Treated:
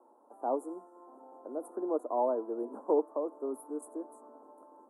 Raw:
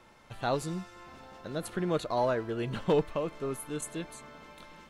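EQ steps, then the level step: steep high-pass 250 Hz 72 dB/oct; elliptic band-stop 940–9600 Hz, stop band 50 dB; air absorption 62 m; 0.0 dB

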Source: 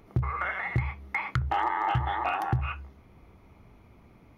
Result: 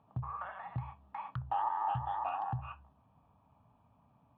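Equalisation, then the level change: speaker cabinet 160–2700 Hz, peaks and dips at 200 Hz -6 dB, 500 Hz -9 dB, 710 Hz -3 dB, 1400 Hz -10 dB; fixed phaser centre 870 Hz, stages 4; -2.5 dB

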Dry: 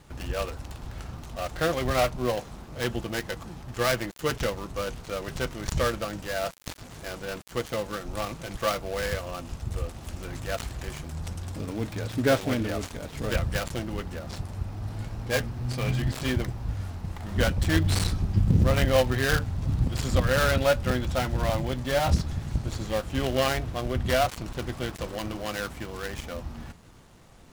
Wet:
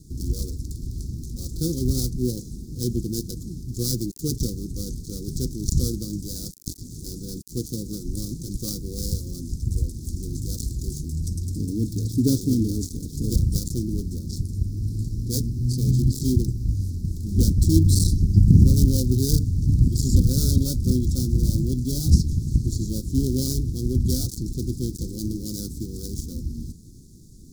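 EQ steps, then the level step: inverse Chebyshev band-stop 600–2900 Hz, stop band 40 dB; +7.5 dB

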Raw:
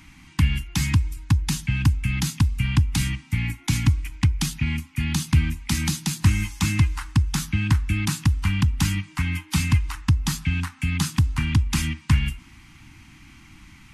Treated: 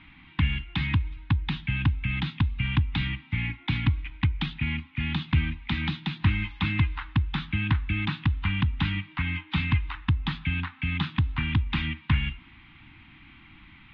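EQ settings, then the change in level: Chebyshev low-pass 3700 Hz, order 5; low shelf 340 Hz -5.5 dB; 0.0 dB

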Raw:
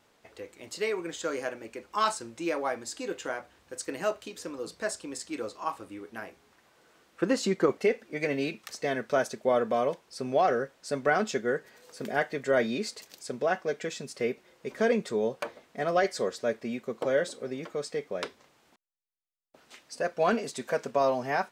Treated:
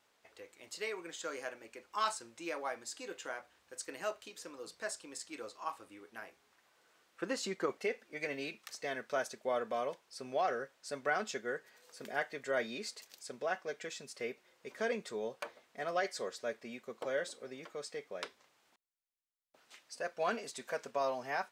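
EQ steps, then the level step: low shelf 440 Hz -11 dB; -5.5 dB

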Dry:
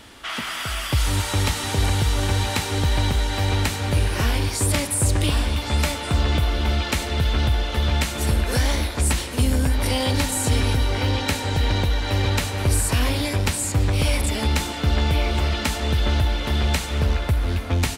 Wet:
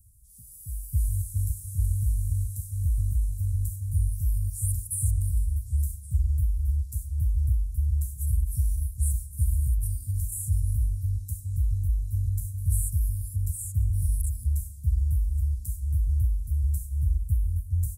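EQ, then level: inverse Chebyshev band-stop 420–2900 Hz, stop band 70 dB; -3.0 dB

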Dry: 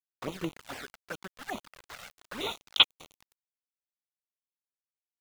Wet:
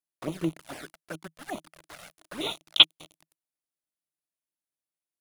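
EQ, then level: thirty-one-band EQ 160 Hz +10 dB, 315 Hz +10 dB, 630 Hz +7 dB, 10000 Hz +9 dB; dynamic EQ 3300 Hz, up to +7 dB, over -42 dBFS, Q 1.7; -2.0 dB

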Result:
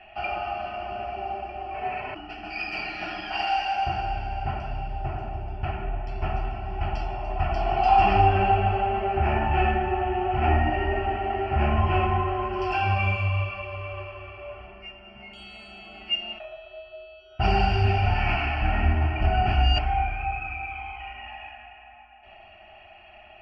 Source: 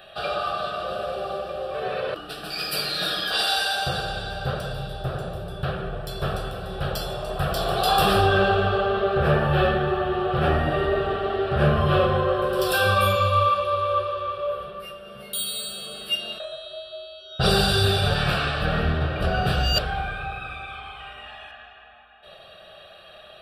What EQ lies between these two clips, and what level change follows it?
LPF 3800 Hz 24 dB/oct; fixed phaser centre 790 Hz, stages 8; fixed phaser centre 2400 Hz, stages 8; +6.5 dB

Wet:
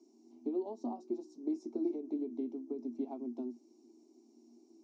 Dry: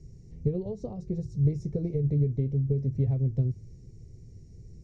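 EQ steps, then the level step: rippled Chebyshev high-pass 230 Hz, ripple 9 dB; air absorption 66 m; fixed phaser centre 490 Hz, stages 6; +8.5 dB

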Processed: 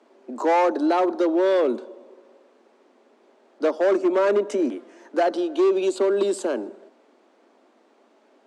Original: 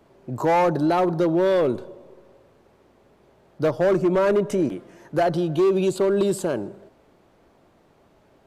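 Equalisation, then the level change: steep high-pass 220 Hz 96 dB/oct; LPF 8700 Hz 24 dB/oct; 0.0 dB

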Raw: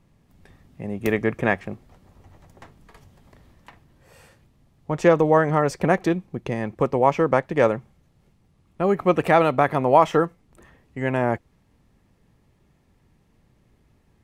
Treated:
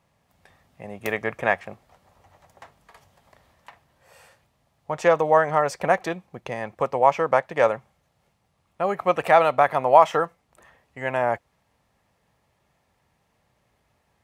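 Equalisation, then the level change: HPF 53 Hz; resonant low shelf 460 Hz -9 dB, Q 1.5; 0.0 dB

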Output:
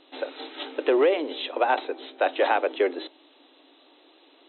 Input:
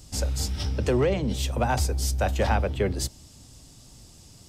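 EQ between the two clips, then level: brick-wall FIR band-pass 270–4100 Hz; +4.0 dB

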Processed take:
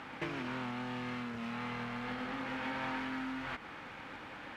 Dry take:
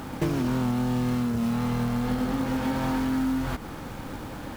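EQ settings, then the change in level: band-pass 2300 Hz, Q 1.6; tilt -2.5 dB/oct; +3.0 dB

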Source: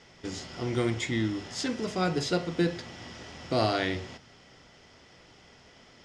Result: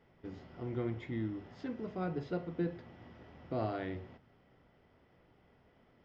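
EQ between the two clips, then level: tape spacing loss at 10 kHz 44 dB; -7.0 dB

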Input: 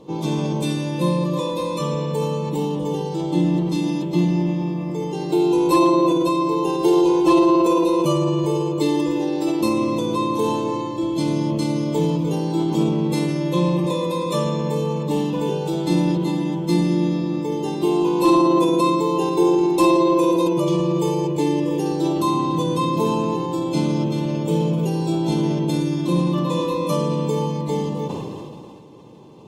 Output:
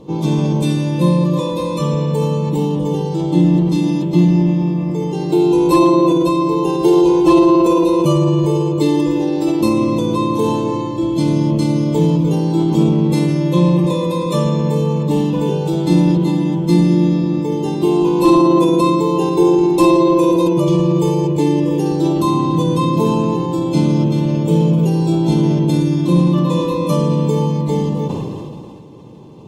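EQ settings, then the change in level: low shelf 230 Hz +9 dB; +2.0 dB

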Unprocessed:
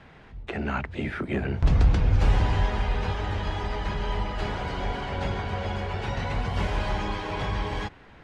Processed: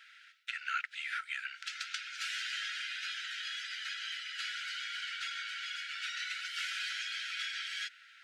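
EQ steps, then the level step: brick-wall FIR high-pass 1300 Hz; bell 1700 Hz -7 dB 1.2 oct; +4.5 dB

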